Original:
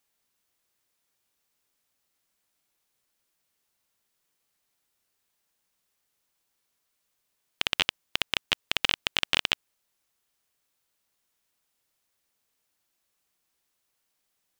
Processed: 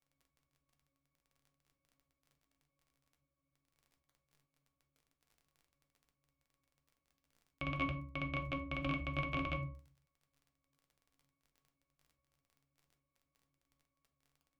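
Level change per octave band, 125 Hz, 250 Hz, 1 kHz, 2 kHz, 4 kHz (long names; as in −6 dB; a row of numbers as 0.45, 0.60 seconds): +8.5, +5.0, −4.0, −11.5, −24.5 decibels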